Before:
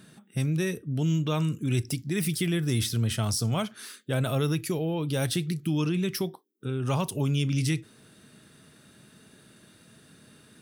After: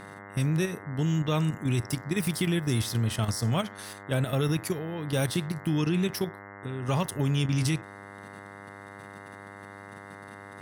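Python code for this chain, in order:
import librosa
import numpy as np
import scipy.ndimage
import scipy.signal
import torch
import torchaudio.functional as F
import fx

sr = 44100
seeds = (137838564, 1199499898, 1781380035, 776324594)

y = fx.level_steps(x, sr, step_db=9)
y = fx.dmg_buzz(y, sr, base_hz=100.0, harmonics=21, level_db=-47.0, tilt_db=-1, odd_only=False)
y = y * 10.0 ** (2.0 / 20.0)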